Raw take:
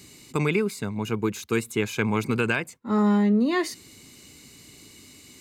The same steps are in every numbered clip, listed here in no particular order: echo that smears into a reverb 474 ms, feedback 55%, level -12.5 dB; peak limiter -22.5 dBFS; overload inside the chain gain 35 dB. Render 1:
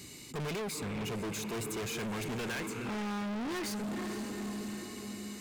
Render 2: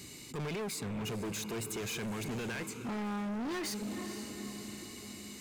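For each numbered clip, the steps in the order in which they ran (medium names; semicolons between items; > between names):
echo that smears into a reverb > overload inside the chain > peak limiter; peak limiter > echo that smears into a reverb > overload inside the chain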